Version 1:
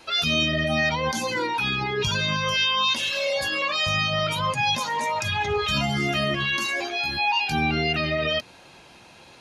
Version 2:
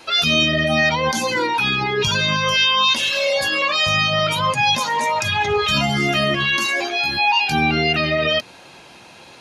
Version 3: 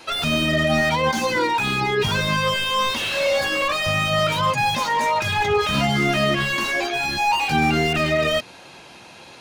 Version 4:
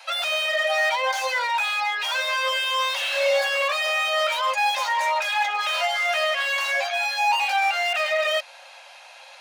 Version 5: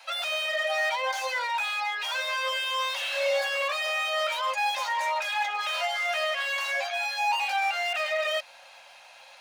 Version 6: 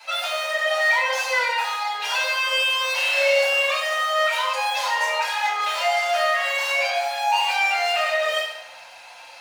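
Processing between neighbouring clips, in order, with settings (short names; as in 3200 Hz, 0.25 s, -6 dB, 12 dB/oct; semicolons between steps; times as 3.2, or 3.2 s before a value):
low shelf 67 Hz -11 dB; gain +6 dB
slew limiter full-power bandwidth 200 Hz
rippled Chebyshev high-pass 530 Hz, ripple 3 dB
crackle 470/s -50 dBFS; gain -5 dB
FDN reverb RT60 0.83 s, low-frequency decay 0.95×, high-frequency decay 0.8×, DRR -7 dB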